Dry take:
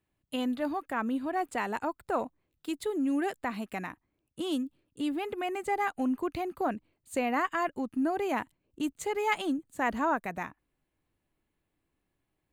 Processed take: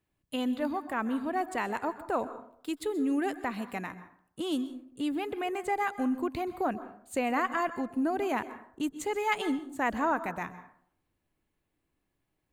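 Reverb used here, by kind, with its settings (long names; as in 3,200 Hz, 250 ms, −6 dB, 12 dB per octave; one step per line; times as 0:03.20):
dense smooth reverb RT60 0.6 s, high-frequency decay 0.5×, pre-delay 115 ms, DRR 13 dB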